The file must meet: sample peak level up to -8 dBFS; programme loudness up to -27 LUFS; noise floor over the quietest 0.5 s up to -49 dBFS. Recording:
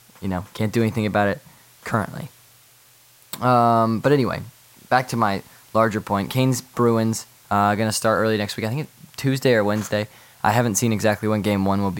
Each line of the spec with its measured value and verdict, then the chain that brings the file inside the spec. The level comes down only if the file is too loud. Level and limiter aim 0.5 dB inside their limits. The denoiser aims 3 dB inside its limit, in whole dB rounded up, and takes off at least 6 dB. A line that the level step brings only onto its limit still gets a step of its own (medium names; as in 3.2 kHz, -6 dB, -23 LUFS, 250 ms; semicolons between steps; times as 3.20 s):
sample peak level -3.0 dBFS: fail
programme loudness -21.5 LUFS: fail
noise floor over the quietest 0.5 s -53 dBFS: pass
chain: trim -6 dB